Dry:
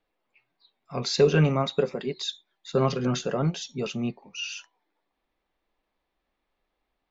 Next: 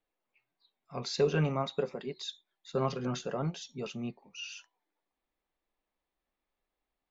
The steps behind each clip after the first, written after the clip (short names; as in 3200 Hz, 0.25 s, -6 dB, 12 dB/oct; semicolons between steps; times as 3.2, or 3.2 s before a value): dynamic EQ 890 Hz, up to +4 dB, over -38 dBFS, Q 1.4; gain -8.5 dB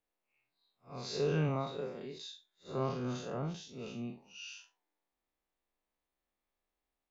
time blur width 0.122 s; gain -1 dB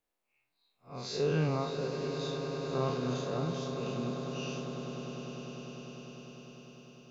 swelling echo 0.1 s, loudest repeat 8, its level -13 dB; gain +2 dB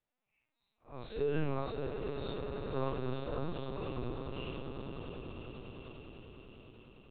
LPC vocoder at 8 kHz pitch kept; gain -3 dB